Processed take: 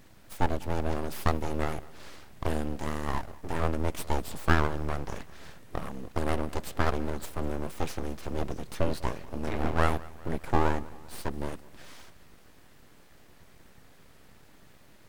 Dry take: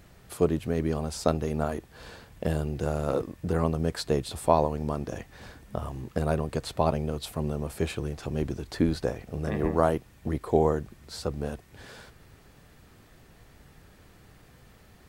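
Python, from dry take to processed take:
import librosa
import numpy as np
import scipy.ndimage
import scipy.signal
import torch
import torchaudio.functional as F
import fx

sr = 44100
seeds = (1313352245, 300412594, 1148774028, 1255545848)

y = fx.low_shelf(x, sr, hz=180.0, db=-9.0, at=(2.76, 3.6))
y = np.abs(y)
y = fx.echo_feedback(y, sr, ms=198, feedback_pct=56, wet_db=-21.5)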